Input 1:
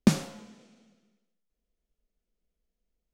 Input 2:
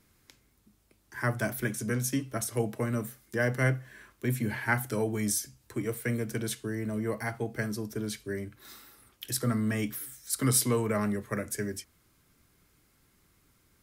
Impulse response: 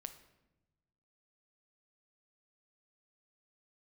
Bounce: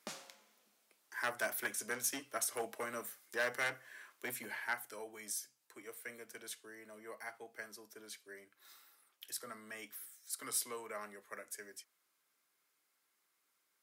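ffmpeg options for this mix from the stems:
-filter_complex "[0:a]volume=-13dB[link_01];[1:a]volume=-2dB,afade=type=out:start_time=4.25:duration=0.54:silence=0.375837[link_02];[link_01][link_02]amix=inputs=2:normalize=0,asoftclip=type=hard:threshold=-26dB,highpass=640"

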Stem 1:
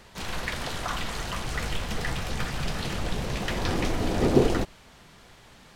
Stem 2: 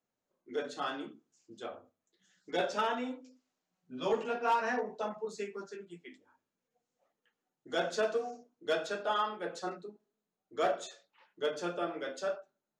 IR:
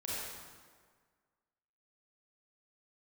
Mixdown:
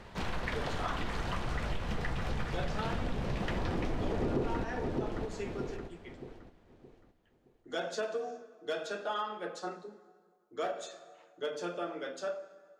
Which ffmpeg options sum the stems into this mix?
-filter_complex "[0:a]lowpass=frequency=1700:poles=1,volume=2.5dB,asplit=2[link_01][link_02];[link_02]volume=-11dB[link_03];[1:a]volume=-2dB,asplit=2[link_04][link_05];[link_05]volume=-14.5dB[link_06];[2:a]atrim=start_sample=2205[link_07];[link_06][link_07]afir=irnorm=-1:irlink=0[link_08];[link_03]aecho=0:1:619|1238|1857|2476|3095:1|0.33|0.109|0.0359|0.0119[link_09];[link_01][link_04][link_08][link_09]amix=inputs=4:normalize=0,asoftclip=type=tanh:threshold=-10dB,acompressor=threshold=-31dB:ratio=4"

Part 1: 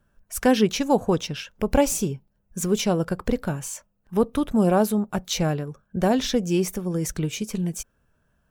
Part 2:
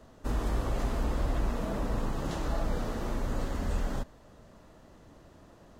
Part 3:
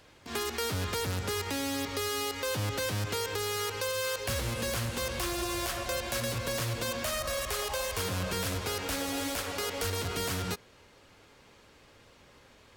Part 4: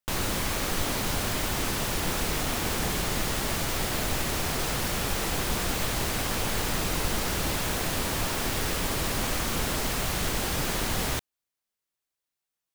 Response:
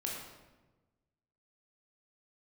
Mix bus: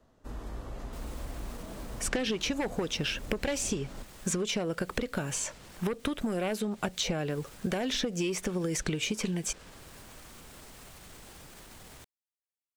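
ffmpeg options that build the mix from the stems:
-filter_complex "[0:a]bass=frequency=250:gain=-8,treble=frequency=4000:gain=-7,aeval=exprs='0.376*sin(PI/2*1.78*val(0)/0.376)':channel_layout=same,adelay=1700,volume=2.5dB[link_01];[1:a]volume=-10dB[link_02];[3:a]alimiter=level_in=0.5dB:limit=-24dB:level=0:latency=1:release=60,volume=-0.5dB,adelay=850,volume=-16.5dB[link_03];[link_01][link_03]amix=inputs=2:normalize=0,equalizer=frequency=8300:width_type=o:width=0.43:gain=4,acompressor=threshold=-20dB:ratio=12,volume=0dB[link_04];[link_02][link_04]amix=inputs=2:normalize=0,acrossover=split=770|1600|7700[link_05][link_06][link_07][link_08];[link_05]acompressor=threshold=-30dB:ratio=4[link_09];[link_06]acompressor=threshold=-52dB:ratio=4[link_10];[link_07]acompressor=threshold=-31dB:ratio=4[link_11];[link_08]acompressor=threshold=-52dB:ratio=4[link_12];[link_09][link_10][link_11][link_12]amix=inputs=4:normalize=0"

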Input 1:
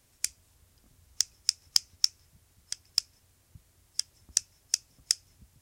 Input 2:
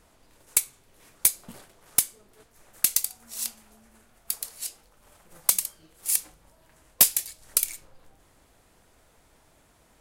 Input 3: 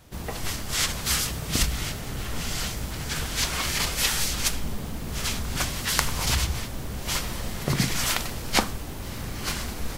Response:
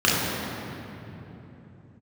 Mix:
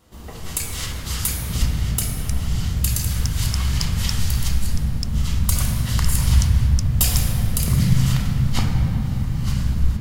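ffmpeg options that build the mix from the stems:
-filter_complex "[0:a]adelay=2050,volume=-5dB[link_01];[1:a]volume=-6dB,asplit=2[link_02][link_03];[link_03]volume=-11.5dB[link_04];[2:a]asubboost=boost=8.5:cutoff=130,volume=-7.5dB,asplit=2[link_05][link_06];[link_06]volume=-19.5dB[link_07];[3:a]atrim=start_sample=2205[link_08];[link_04][link_07]amix=inputs=2:normalize=0[link_09];[link_09][link_08]afir=irnorm=-1:irlink=0[link_10];[link_01][link_02][link_05][link_10]amix=inputs=4:normalize=0"

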